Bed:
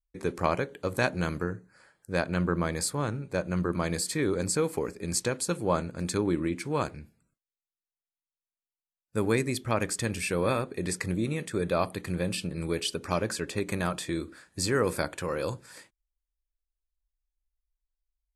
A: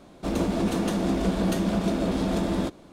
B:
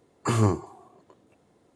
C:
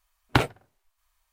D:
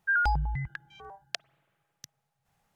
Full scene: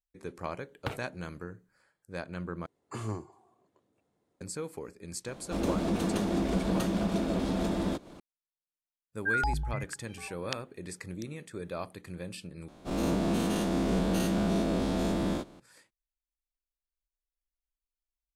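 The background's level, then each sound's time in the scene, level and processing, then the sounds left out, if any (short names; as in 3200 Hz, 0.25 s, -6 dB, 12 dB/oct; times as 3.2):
bed -10.5 dB
0.51 add C -15.5 dB
2.66 replace with B -14 dB
5.28 add A -4.5 dB + upward compressor 4:1, threshold -38 dBFS
9.18 add D -3.5 dB
12.68 replace with A -8 dB + spectral dilation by 0.12 s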